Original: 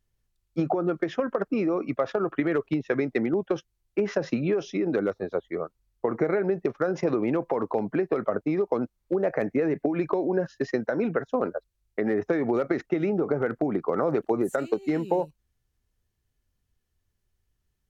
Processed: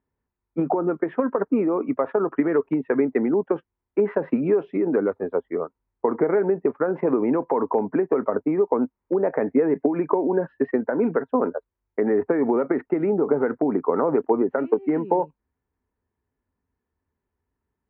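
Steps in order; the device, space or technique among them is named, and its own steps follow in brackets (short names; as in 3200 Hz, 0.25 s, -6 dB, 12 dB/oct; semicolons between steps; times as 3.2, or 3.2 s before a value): LPF 4000 Hz; bass cabinet (speaker cabinet 73–2100 Hz, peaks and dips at 120 Hz -9 dB, 260 Hz +8 dB, 430 Hz +6 dB, 940 Hz +10 dB)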